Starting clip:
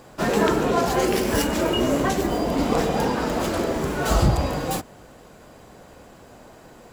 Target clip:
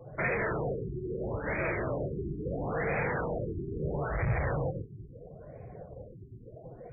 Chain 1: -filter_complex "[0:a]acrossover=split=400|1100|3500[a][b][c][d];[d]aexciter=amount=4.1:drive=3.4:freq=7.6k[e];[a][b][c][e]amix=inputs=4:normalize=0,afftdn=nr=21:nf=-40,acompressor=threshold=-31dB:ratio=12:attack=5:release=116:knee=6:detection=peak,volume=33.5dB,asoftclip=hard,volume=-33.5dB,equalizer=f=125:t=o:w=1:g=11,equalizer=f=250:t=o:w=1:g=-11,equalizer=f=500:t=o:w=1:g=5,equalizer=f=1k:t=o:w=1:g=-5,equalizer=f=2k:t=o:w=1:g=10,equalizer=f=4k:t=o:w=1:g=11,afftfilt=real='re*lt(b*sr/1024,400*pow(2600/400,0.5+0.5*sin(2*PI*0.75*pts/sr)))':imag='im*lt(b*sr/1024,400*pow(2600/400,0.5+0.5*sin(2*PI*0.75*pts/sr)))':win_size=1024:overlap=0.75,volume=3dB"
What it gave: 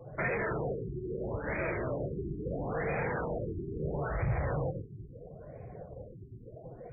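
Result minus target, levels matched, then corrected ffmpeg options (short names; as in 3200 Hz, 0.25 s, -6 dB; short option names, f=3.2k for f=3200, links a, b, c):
compressor: peak gain reduction +6 dB
-filter_complex "[0:a]acrossover=split=400|1100|3500[a][b][c][d];[d]aexciter=amount=4.1:drive=3.4:freq=7.6k[e];[a][b][c][e]amix=inputs=4:normalize=0,afftdn=nr=21:nf=-40,acompressor=threshold=-24.5dB:ratio=12:attack=5:release=116:knee=6:detection=peak,volume=33.5dB,asoftclip=hard,volume=-33.5dB,equalizer=f=125:t=o:w=1:g=11,equalizer=f=250:t=o:w=1:g=-11,equalizer=f=500:t=o:w=1:g=5,equalizer=f=1k:t=o:w=1:g=-5,equalizer=f=2k:t=o:w=1:g=10,equalizer=f=4k:t=o:w=1:g=11,afftfilt=real='re*lt(b*sr/1024,400*pow(2600/400,0.5+0.5*sin(2*PI*0.75*pts/sr)))':imag='im*lt(b*sr/1024,400*pow(2600/400,0.5+0.5*sin(2*PI*0.75*pts/sr)))':win_size=1024:overlap=0.75,volume=3dB"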